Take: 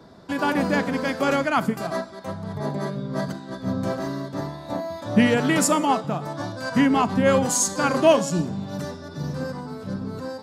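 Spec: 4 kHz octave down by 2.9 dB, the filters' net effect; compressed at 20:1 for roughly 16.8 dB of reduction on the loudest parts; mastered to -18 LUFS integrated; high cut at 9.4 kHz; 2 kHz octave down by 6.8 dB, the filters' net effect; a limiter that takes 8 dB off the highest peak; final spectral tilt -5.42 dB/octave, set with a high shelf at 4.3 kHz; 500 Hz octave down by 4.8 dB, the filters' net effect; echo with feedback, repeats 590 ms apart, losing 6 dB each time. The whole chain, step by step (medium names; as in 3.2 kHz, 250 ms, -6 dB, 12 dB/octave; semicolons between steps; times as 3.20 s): low-pass 9.4 kHz; peaking EQ 500 Hz -5.5 dB; peaking EQ 2 kHz -9 dB; peaking EQ 4 kHz -4 dB; treble shelf 4.3 kHz +6 dB; compression 20:1, threshold -30 dBFS; peak limiter -28.5 dBFS; feedback delay 590 ms, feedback 50%, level -6 dB; trim +18.5 dB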